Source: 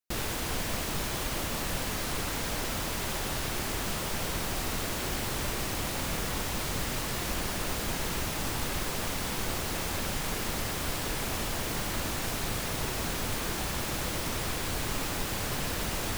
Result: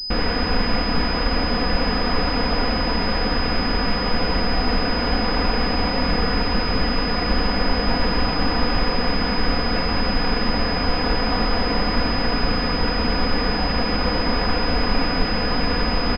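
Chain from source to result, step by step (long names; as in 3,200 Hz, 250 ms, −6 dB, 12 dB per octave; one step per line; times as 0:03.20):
in parallel at −10.5 dB: sample-and-hold swept by an LFO 29×, swing 100% 0.33 Hz
on the sum: background noise brown −58 dBFS
comb filter 4.1 ms, depth 87%
switching amplifier with a slow clock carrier 5,000 Hz
level +8.5 dB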